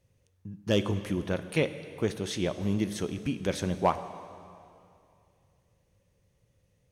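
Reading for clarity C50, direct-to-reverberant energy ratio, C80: 12.0 dB, 11.0 dB, 12.5 dB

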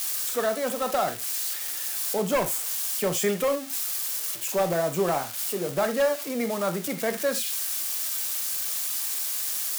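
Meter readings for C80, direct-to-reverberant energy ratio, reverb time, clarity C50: 23.5 dB, 8.0 dB, not exponential, 13.5 dB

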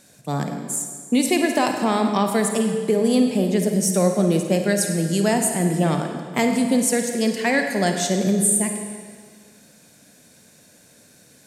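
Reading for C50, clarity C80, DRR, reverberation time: 4.5 dB, 6.0 dB, 4.0 dB, 1.8 s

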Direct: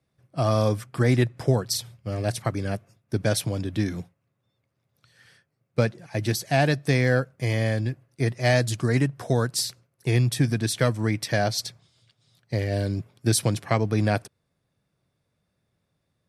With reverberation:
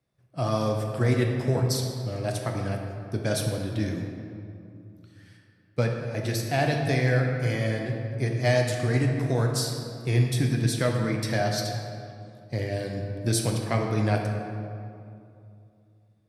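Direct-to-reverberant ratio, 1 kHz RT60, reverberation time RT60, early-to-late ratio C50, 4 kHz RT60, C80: 1.0 dB, 2.4 s, 2.6 s, 3.0 dB, 1.4 s, 4.5 dB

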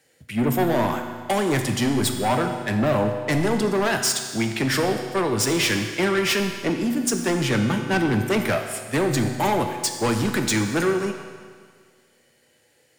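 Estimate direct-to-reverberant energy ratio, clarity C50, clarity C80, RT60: 4.5 dB, 6.5 dB, 7.5 dB, 1.8 s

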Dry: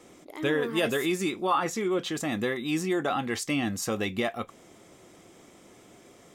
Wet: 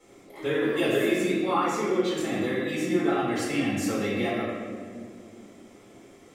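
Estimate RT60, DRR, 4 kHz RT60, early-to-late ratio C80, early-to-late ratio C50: 2.1 s, -9.5 dB, 1.1 s, 1.5 dB, -1.0 dB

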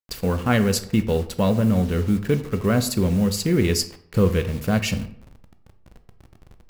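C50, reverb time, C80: 13.0 dB, 0.65 s, 16.5 dB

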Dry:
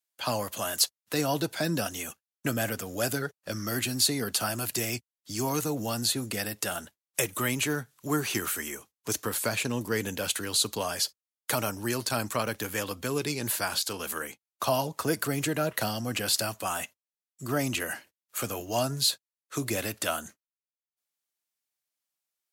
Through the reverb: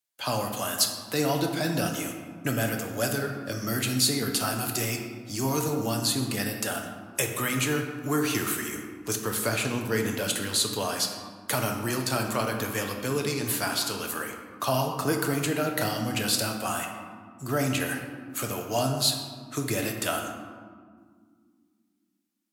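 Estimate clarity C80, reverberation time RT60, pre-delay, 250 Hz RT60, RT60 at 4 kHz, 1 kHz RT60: 6.5 dB, 2.0 s, 7 ms, 3.1 s, 0.90 s, 1.8 s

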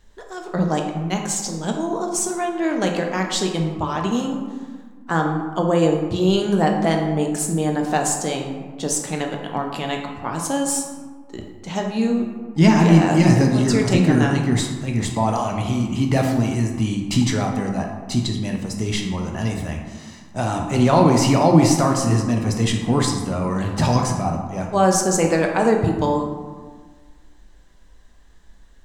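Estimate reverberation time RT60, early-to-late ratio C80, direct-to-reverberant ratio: 1.5 s, 6.5 dB, 1.5 dB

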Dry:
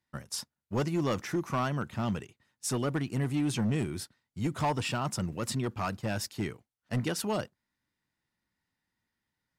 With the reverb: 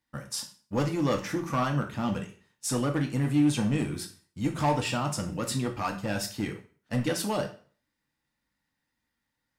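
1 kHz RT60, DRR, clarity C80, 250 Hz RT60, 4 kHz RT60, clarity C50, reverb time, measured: 0.45 s, 2.5 dB, 16.0 dB, 0.40 s, 0.40 s, 10.5 dB, 0.45 s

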